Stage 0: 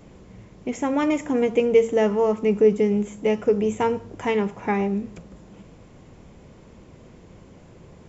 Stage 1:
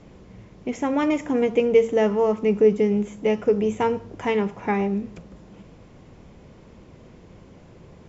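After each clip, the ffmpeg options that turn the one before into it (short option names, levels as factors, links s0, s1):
-af "lowpass=f=6600:w=0.5412,lowpass=f=6600:w=1.3066"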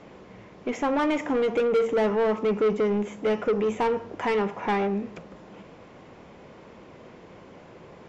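-filter_complex "[0:a]asplit=2[s0][s1];[s1]highpass=f=720:p=1,volume=14.1,asoftclip=type=tanh:threshold=0.473[s2];[s0][s2]amix=inputs=2:normalize=0,lowpass=f=1900:p=1,volume=0.501,volume=0.376"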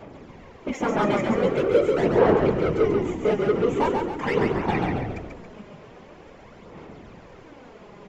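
-filter_complex "[0:a]afftfilt=real='hypot(re,im)*cos(2*PI*random(0))':imag='hypot(re,im)*sin(2*PI*random(1))':win_size=512:overlap=0.75,aphaser=in_gain=1:out_gain=1:delay=4.9:decay=0.51:speed=0.44:type=sinusoidal,asplit=7[s0][s1][s2][s3][s4][s5][s6];[s1]adelay=138,afreqshift=-43,volume=0.631[s7];[s2]adelay=276,afreqshift=-86,volume=0.292[s8];[s3]adelay=414,afreqshift=-129,volume=0.133[s9];[s4]adelay=552,afreqshift=-172,volume=0.0617[s10];[s5]adelay=690,afreqshift=-215,volume=0.0282[s11];[s6]adelay=828,afreqshift=-258,volume=0.013[s12];[s0][s7][s8][s9][s10][s11][s12]amix=inputs=7:normalize=0,volume=1.78"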